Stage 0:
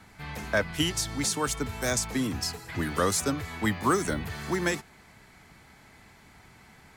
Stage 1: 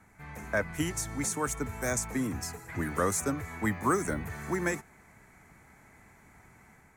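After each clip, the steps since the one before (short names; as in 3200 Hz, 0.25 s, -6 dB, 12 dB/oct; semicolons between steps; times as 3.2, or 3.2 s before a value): band shelf 3800 Hz -12 dB 1.1 oct; AGC gain up to 4 dB; gain -6.5 dB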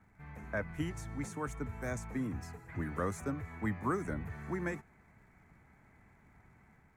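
tone controls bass +5 dB, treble -12 dB; crackle 170/s -62 dBFS; gain -7.5 dB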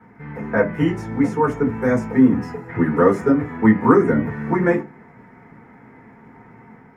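reverb RT60 0.25 s, pre-delay 3 ms, DRR -4.5 dB; gain +1 dB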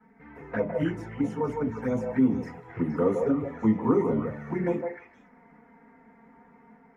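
envelope flanger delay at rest 4.8 ms, full sweep at -14 dBFS; delay with a stepping band-pass 0.156 s, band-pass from 670 Hz, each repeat 1.4 oct, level -0.5 dB; gain -8.5 dB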